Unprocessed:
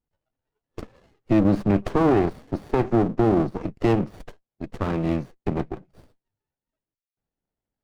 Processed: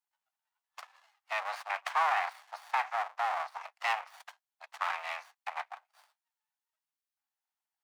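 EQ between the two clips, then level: steep high-pass 770 Hz 48 dB/octave; dynamic bell 2.1 kHz, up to +5 dB, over -49 dBFS, Q 2; 0.0 dB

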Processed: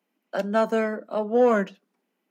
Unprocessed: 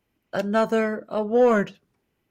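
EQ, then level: rippled Chebyshev high-pass 180 Hz, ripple 3 dB; 0.0 dB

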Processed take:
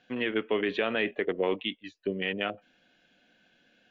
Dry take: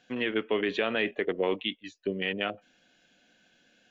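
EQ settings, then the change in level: low-pass 4.1 kHz 12 dB/octave; 0.0 dB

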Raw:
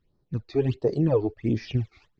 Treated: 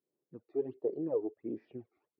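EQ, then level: ladder band-pass 470 Hz, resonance 30%; 0.0 dB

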